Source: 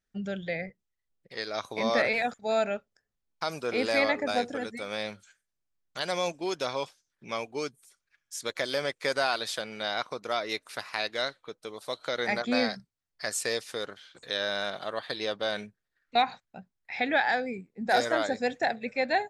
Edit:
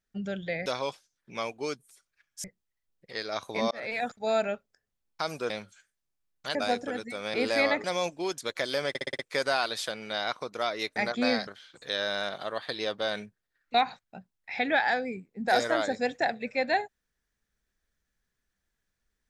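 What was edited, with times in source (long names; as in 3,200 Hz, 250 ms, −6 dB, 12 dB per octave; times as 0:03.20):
0:01.93–0:02.33: fade in
0:03.72–0:04.22: swap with 0:05.01–0:06.06
0:06.60–0:08.38: move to 0:00.66
0:08.89: stutter 0.06 s, 6 plays
0:10.66–0:12.26: remove
0:12.77–0:13.88: remove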